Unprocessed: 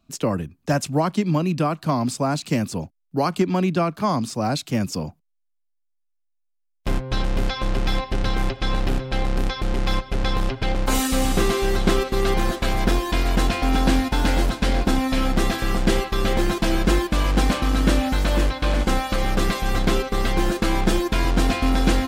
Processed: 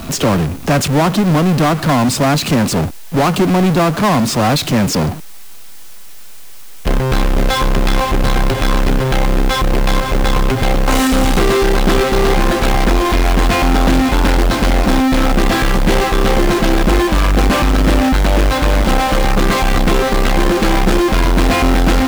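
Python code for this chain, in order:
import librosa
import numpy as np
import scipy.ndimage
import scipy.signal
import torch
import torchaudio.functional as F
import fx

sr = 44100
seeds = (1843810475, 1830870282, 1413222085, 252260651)

y = fx.high_shelf(x, sr, hz=4500.0, db=-11.5)
y = fx.power_curve(y, sr, exponent=0.35)
y = fx.dmg_noise_colour(y, sr, seeds[0], colour='white', level_db=-41.0)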